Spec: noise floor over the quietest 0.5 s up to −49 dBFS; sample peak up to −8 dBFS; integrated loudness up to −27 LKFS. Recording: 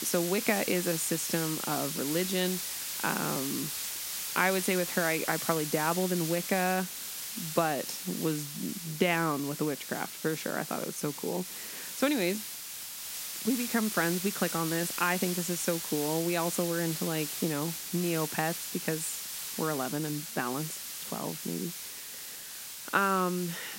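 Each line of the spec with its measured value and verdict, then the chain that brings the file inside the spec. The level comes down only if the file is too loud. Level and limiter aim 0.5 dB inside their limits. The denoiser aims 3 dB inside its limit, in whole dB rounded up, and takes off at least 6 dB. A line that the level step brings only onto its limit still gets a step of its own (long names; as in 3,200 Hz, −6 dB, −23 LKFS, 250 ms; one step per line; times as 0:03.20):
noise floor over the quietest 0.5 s −43 dBFS: out of spec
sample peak −9.5 dBFS: in spec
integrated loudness −31.0 LKFS: in spec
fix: broadband denoise 9 dB, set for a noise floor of −43 dBFS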